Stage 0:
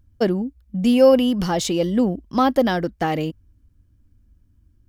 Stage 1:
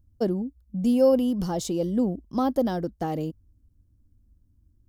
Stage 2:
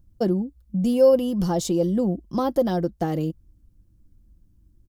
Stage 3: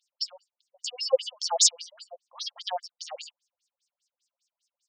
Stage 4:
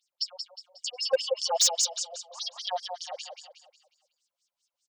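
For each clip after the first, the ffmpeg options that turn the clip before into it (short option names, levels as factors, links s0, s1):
-af "equalizer=f=2200:t=o:w=1.7:g=-14,volume=0.596"
-filter_complex "[0:a]aecho=1:1:5.8:0.42,asplit=2[s0][s1];[s1]acompressor=threshold=0.0282:ratio=6,volume=0.794[s2];[s0][s2]amix=inputs=2:normalize=0"
-af "aemphasis=mode=reproduction:type=75fm,aexciter=amount=15.4:drive=2.5:freq=2700,afftfilt=real='re*between(b*sr/1024,670*pow(6900/670,0.5+0.5*sin(2*PI*5*pts/sr))/1.41,670*pow(6900/670,0.5+0.5*sin(2*PI*5*pts/sr))*1.41)':imag='im*between(b*sr/1024,670*pow(6900/670,0.5+0.5*sin(2*PI*5*pts/sr))/1.41,670*pow(6900/670,0.5+0.5*sin(2*PI*5*pts/sr))*1.41)':win_size=1024:overlap=0.75"
-filter_complex "[0:a]asplit=2[s0][s1];[s1]aecho=0:1:181|362|543|724|905:0.473|0.189|0.0757|0.0303|0.0121[s2];[s0][s2]amix=inputs=2:normalize=0,asoftclip=type=hard:threshold=0.15"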